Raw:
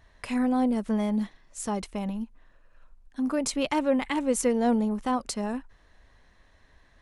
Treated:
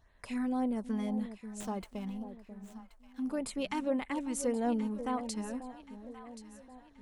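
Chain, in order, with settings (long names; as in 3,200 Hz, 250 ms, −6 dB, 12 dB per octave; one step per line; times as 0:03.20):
auto-filter notch sine 1.8 Hz 530–6,100 Hz
delay that swaps between a low-pass and a high-pass 539 ms, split 830 Hz, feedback 63%, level −10 dB
0:01.60–0:03.22: windowed peak hold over 3 samples
level −7.5 dB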